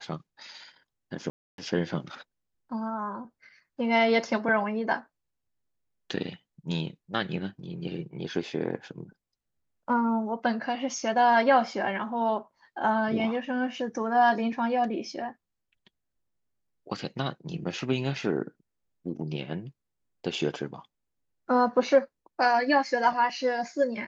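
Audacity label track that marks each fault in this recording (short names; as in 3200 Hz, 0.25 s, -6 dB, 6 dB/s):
1.300000	1.580000	gap 0.282 s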